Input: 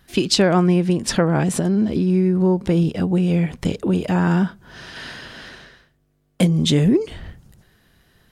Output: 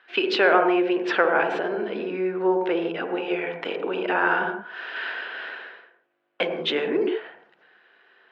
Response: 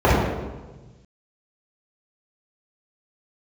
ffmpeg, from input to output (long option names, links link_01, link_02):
-filter_complex "[0:a]asplit=2[link_01][link_02];[1:a]atrim=start_sample=2205,atrim=end_sample=6174,adelay=50[link_03];[link_02][link_03]afir=irnorm=-1:irlink=0,volume=-30.5dB[link_04];[link_01][link_04]amix=inputs=2:normalize=0,apsyclip=6.5dB,highpass=frequency=430:width=0.5412,highpass=frequency=430:width=1.3066,equalizer=frequency=580:width_type=q:width=4:gain=-4,equalizer=frequency=1500:width_type=q:width=4:gain=7,equalizer=frequency=2600:width_type=q:width=4:gain=4,lowpass=frequency=3100:width=0.5412,lowpass=frequency=3100:width=1.3066,volume=-5dB"